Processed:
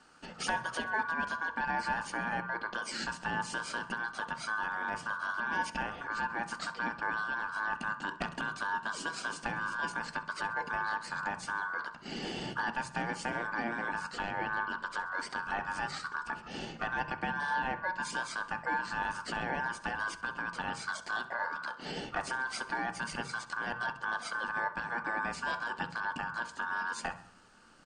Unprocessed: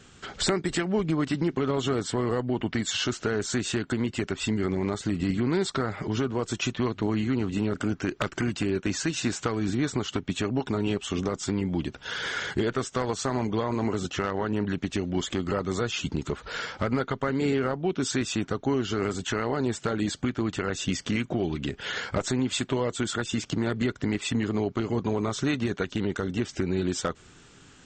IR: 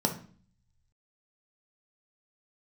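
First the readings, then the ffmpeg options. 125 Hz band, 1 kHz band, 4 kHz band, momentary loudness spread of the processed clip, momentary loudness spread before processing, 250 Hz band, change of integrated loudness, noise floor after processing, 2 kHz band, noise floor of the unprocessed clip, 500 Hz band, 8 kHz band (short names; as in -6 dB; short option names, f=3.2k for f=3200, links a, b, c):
-18.5 dB, +2.0 dB, -9.5 dB, 4 LU, 3 LU, -17.5 dB, -7.0 dB, -51 dBFS, +3.0 dB, -53 dBFS, -15.5 dB, -11.0 dB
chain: -filter_complex "[0:a]aecho=1:1:66|132|198|264:0.112|0.0595|0.0315|0.0167,aeval=exprs='val(0)*sin(2*PI*1300*n/s)':c=same,asplit=2[a][b];[1:a]atrim=start_sample=2205,lowpass=3.1k[c];[b][c]afir=irnorm=-1:irlink=0,volume=-10dB[d];[a][d]amix=inputs=2:normalize=0,volume=-7.5dB"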